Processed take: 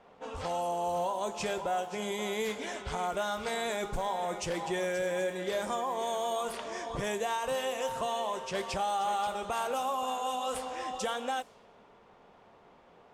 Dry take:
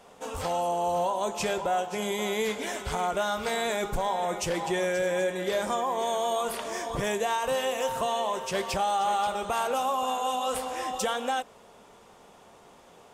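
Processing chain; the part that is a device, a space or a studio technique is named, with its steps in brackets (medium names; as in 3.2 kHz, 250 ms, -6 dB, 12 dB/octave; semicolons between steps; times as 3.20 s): cassette deck with a dynamic noise filter (white noise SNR 30 dB; level-controlled noise filter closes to 2.2 kHz, open at -24 dBFS); trim -4.5 dB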